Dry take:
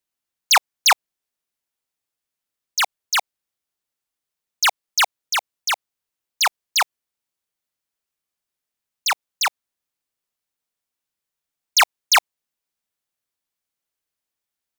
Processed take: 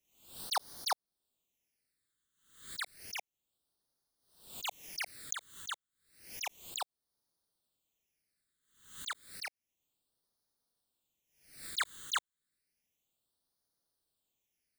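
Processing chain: phase shifter stages 8, 0.31 Hz, lowest notch 710–2500 Hz; slow attack 430 ms; swell ahead of each attack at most 99 dB/s; trim +3 dB

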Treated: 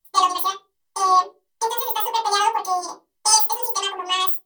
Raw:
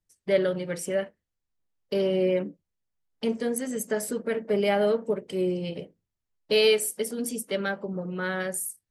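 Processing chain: tilt EQ +3 dB/octave; reverberation RT60 0.35 s, pre-delay 4 ms, DRR -5 dB; speed mistake 7.5 ips tape played at 15 ips

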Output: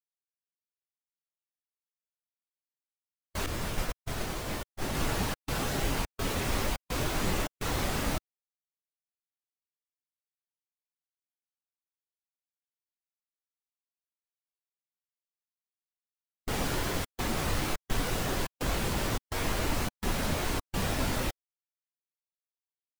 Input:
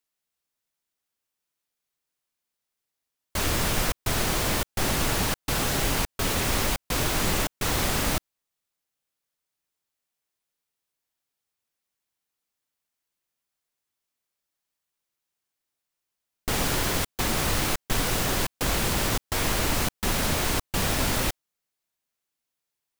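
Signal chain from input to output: 3.46–4.95 s: expander -21 dBFS; bass shelf 180 Hz -4 dB; spectral contrast expander 1.5:1; trim -3 dB

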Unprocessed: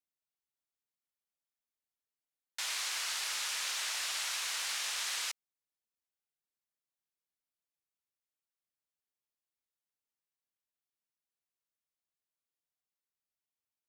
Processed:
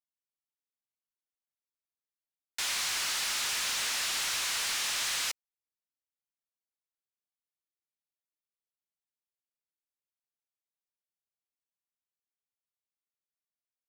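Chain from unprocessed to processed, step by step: waveshaping leveller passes 3; trim -3 dB

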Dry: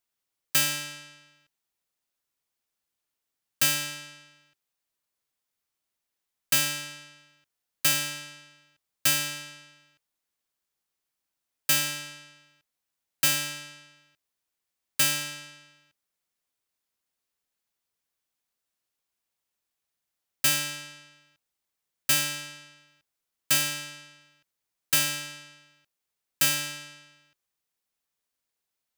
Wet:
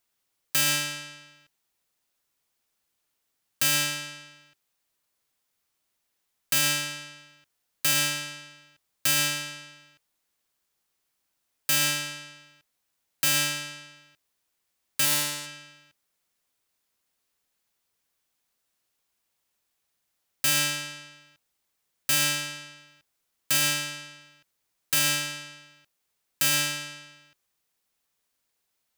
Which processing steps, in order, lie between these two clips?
15.04–15.45 s: spectral peaks clipped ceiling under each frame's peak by 14 dB; peak limiter -20 dBFS, peak gain reduction 9 dB; trim +6.5 dB

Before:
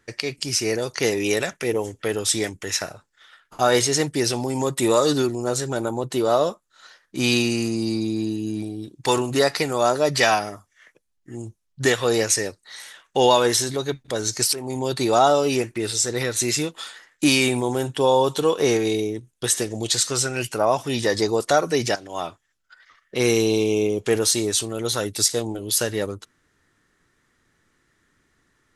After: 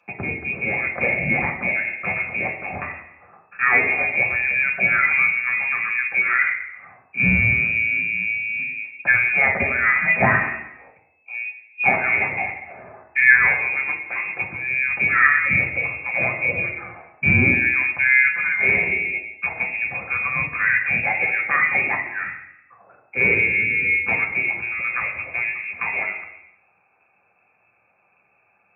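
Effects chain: frequency inversion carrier 2.6 kHz; reverberation RT60 0.85 s, pre-delay 3 ms, DRR 0 dB; trim -6.5 dB

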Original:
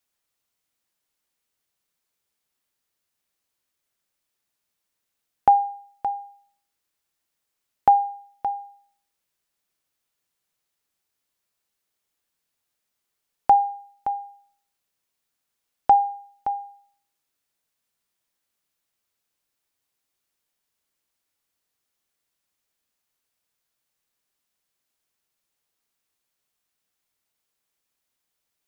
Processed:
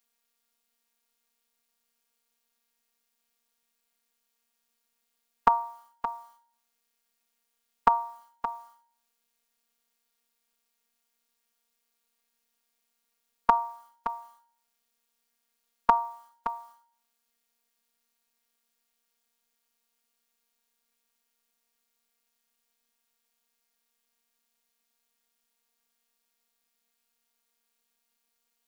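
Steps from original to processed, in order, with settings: robot voice 233 Hz; formant shift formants +4 st; trim +4 dB

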